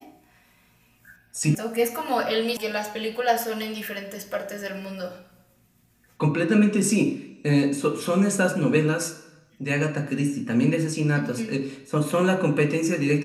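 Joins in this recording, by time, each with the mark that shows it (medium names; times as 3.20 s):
1.55 s: sound stops dead
2.57 s: sound stops dead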